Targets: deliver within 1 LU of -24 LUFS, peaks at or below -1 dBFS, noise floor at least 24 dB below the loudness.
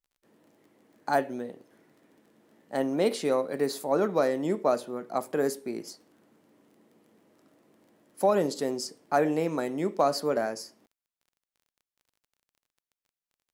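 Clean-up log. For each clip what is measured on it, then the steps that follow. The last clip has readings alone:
tick rate 22 per s; loudness -28.5 LUFS; peak level -13.0 dBFS; loudness target -24.0 LUFS
-> de-click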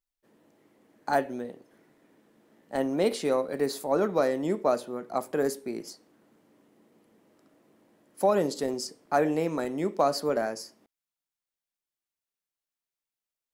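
tick rate 0.44 per s; loudness -28.5 LUFS; peak level -12.5 dBFS; loudness target -24.0 LUFS
-> trim +4.5 dB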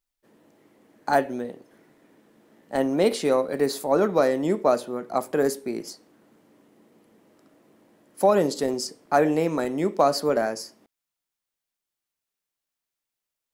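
loudness -24.0 LUFS; peak level -8.0 dBFS; noise floor -87 dBFS

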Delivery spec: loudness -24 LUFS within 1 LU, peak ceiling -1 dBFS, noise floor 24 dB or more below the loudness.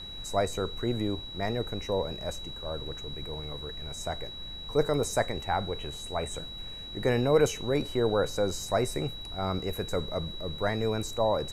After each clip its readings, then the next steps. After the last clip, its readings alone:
steady tone 3.9 kHz; tone level -40 dBFS; noise floor -41 dBFS; noise floor target -55 dBFS; loudness -31.0 LUFS; peak level -11.5 dBFS; loudness target -24.0 LUFS
-> band-stop 3.9 kHz, Q 30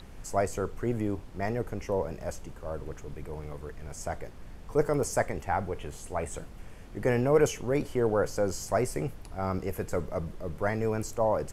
steady tone not found; noise floor -46 dBFS; noise floor target -55 dBFS
-> noise print and reduce 9 dB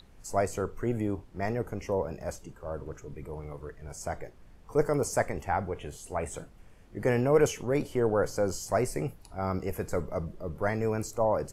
noise floor -54 dBFS; noise floor target -55 dBFS
-> noise print and reduce 6 dB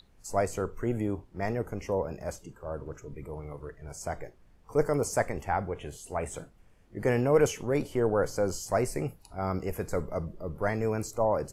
noise floor -59 dBFS; loudness -31.0 LUFS; peak level -11.5 dBFS; loudness target -24.0 LUFS
-> trim +7 dB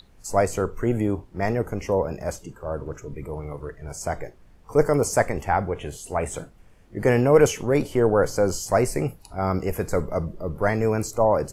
loudness -24.0 LUFS; peak level -4.5 dBFS; noise floor -52 dBFS

